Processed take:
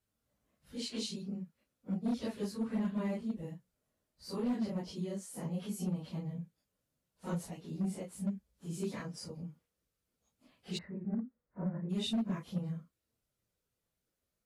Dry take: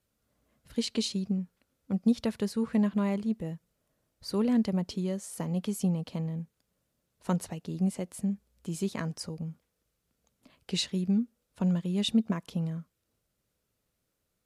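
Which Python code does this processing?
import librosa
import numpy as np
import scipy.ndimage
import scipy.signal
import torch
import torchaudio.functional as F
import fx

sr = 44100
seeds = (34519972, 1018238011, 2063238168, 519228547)

y = fx.phase_scramble(x, sr, seeds[0], window_ms=100)
y = np.clip(y, -10.0 ** (-22.0 / 20.0), 10.0 ** (-22.0 / 20.0))
y = fx.ellip_lowpass(y, sr, hz=2000.0, order=4, stop_db=40, at=(10.77, 11.89), fade=0.02)
y = y * 10.0 ** (-6.5 / 20.0)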